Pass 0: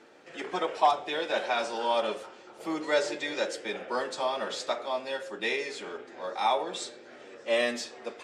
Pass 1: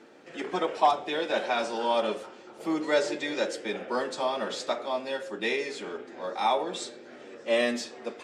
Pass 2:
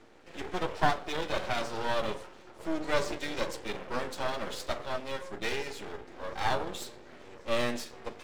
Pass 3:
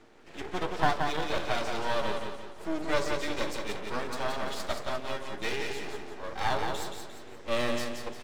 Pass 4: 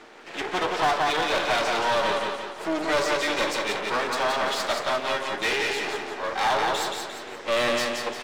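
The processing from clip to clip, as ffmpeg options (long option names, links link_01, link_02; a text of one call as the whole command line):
ffmpeg -i in.wav -af "equalizer=frequency=230:width_type=o:width=1.6:gain=6" out.wav
ffmpeg -i in.wav -af "aeval=exprs='max(val(0),0)':channel_layout=same" out.wav
ffmpeg -i in.wav -af "bandreject=frequency=520:width=17,aecho=1:1:175|350|525|700|875:0.562|0.225|0.09|0.036|0.0144" out.wav
ffmpeg -i in.wav -filter_complex "[0:a]asplit=2[link_01][link_02];[link_02]highpass=frequency=720:poles=1,volume=23dB,asoftclip=type=tanh:threshold=-10dB[link_03];[link_01][link_03]amix=inputs=2:normalize=0,lowpass=frequency=5200:poles=1,volume=-6dB,volume=-3dB" out.wav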